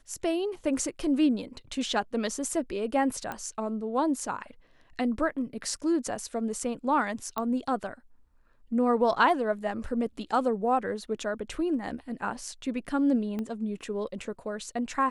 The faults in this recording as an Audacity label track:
3.320000	3.320000	pop -20 dBFS
7.380000	7.380000	pop -17 dBFS
13.390000	13.390000	pop -22 dBFS

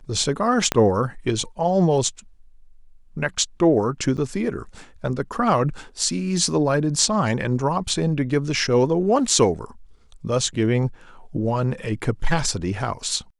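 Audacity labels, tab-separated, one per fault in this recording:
0.720000	0.720000	pop -4 dBFS
4.170000	4.180000	gap 8 ms

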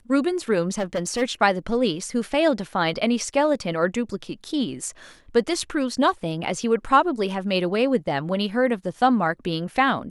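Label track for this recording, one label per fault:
0.730000	1.230000	clipped -20.5 dBFS

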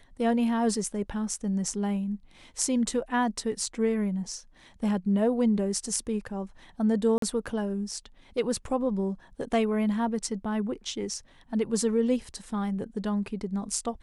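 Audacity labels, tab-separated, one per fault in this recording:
7.180000	7.220000	gap 43 ms

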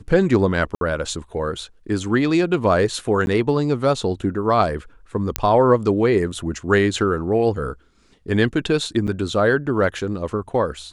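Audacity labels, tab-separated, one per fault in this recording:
0.750000	0.810000	gap 62 ms
3.260000	3.270000	gap 11 ms
5.360000	5.360000	pop -1 dBFS
9.070000	9.080000	gap 7.9 ms

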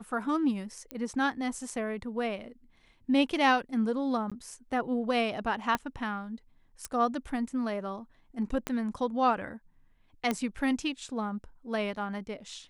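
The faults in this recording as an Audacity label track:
0.910000	0.910000	pop -21 dBFS
4.300000	4.320000	gap 16 ms
5.750000	5.750000	pop -14 dBFS
6.850000	6.850000	pop -20 dBFS
8.670000	8.670000	pop -16 dBFS
10.310000	10.310000	pop -15 dBFS

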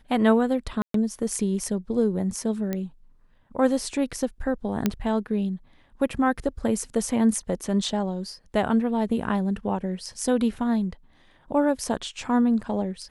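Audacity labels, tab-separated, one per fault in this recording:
0.820000	0.940000	gap 0.123 s
2.730000	2.730000	pop -15 dBFS
4.860000	4.860000	pop -8 dBFS

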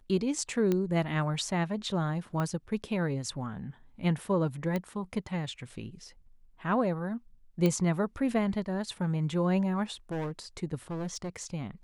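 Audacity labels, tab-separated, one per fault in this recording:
0.720000	0.720000	pop -16 dBFS
2.400000	2.400000	pop -20 dBFS
4.760000	4.760000	pop -19 dBFS
7.660000	7.660000	pop -15 dBFS
10.110000	10.310000	clipped -31 dBFS
10.900000	11.460000	clipped -31.5 dBFS

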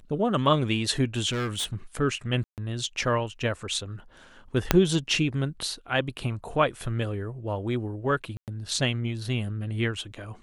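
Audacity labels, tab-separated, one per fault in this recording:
1.300000	1.750000	clipped -25.5 dBFS
2.440000	2.580000	gap 0.138 s
4.710000	4.710000	pop -2 dBFS
8.370000	8.480000	gap 0.108 s

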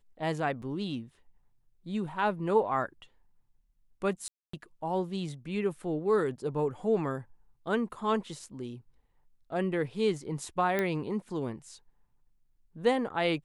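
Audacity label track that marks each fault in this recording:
0.620000	0.620000	gap 2.1 ms
4.280000	4.530000	gap 0.254 s
10.790000	10.790000	pop -16 dBFS

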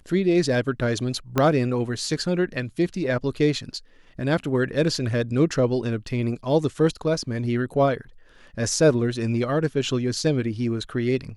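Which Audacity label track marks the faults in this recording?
1.380000	1.380000	pop -7 dBFS

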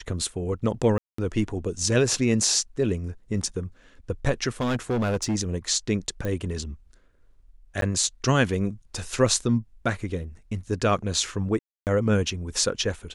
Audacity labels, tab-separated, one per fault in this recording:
0.980000	1.180000	gap 0.204 s
4.600000	5.360000	clipped -21 dBFS
6.250000	6.250000	pop -18 dBFS
7.810000	7.820000	gap 12 ms
11.590000	11.870000	gap 0.278 s

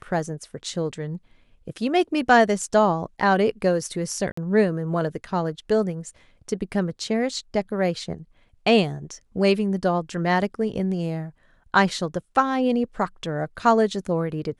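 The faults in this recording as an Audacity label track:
4.320000	4.370000	gap 54 ms

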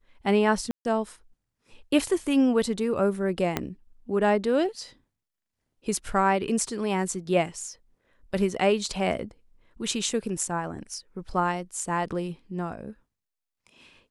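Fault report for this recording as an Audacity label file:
0.710000	0.850000	gap 0.141 s
3.570000	3.570000	pop -10 dBFS

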